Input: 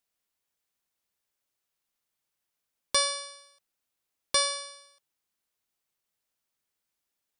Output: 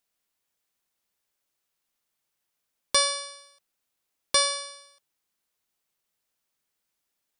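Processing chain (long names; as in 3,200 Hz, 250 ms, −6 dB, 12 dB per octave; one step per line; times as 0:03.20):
parametric band 80 Hz −4 dB 0.58 octaves
level +3 dB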